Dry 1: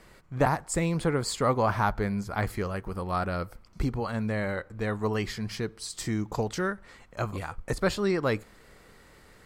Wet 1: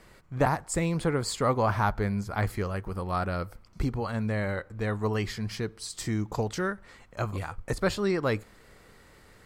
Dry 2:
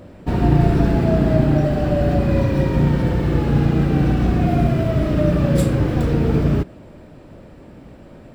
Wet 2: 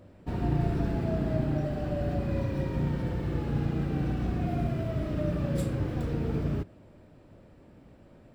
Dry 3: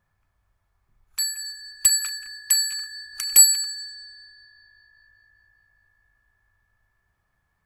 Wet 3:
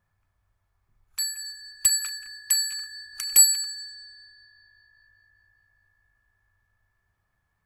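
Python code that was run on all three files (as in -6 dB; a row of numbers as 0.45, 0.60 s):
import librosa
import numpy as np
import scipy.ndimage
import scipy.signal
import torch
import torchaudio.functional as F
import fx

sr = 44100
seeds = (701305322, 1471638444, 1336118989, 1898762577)

y = fx.peak_eq(x, sr, hz=100.0, db=4.5, octaves=0.27)
y = y * 10.0 ** (-30 / 20.0) / np.sqrt(np.mean(np.square(y)))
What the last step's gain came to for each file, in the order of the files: -0.5, -13.0, -3.0 dB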